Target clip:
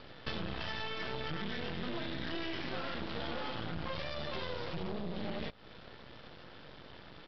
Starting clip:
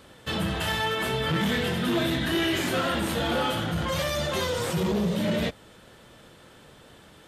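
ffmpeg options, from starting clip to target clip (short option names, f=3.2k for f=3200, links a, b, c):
-af "acompressor=threshold=-35dB:ratio=10,aresample=11025,aeval=exprs='max(val(0),0)':c=same,aresample=44100,volume=3dB"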